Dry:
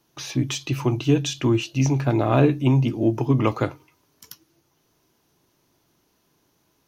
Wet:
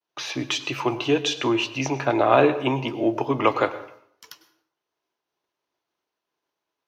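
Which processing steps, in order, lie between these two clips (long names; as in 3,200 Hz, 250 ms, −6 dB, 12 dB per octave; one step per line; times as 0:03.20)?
downward expander −54 dBFS
three-way crossover with the lows and the highs turned down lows −19 dB, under 390 Hz, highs −14 dB, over 4,700 Hz
dense smooth reverb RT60 0.63 s, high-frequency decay 0.65×, pre-delay 90 ms, DRR 13.5 dB
level +6 dB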